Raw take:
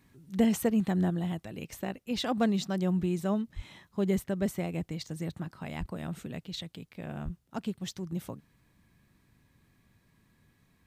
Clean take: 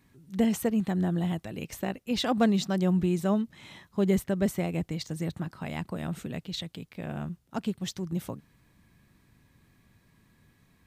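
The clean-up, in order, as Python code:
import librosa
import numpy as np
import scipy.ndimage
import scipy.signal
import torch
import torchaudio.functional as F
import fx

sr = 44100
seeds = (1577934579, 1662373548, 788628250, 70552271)

y = fx.highpass(x, sr, hz=140.0, slope=24, at=(3.55, 3.67), fade=0.02)
y = fx.highpass(y, sr, hz=140.0, slope=24, at=(5.79, 5.91), fade=0.02)
y = fx.highpass(y, sr, hz=140.0, slope=24, at=(7.24, 7.36), fade=0.02)
y = fx.gain(y, sr, db=fx.steps((0.0, 0.0), (1.1, 3.5)))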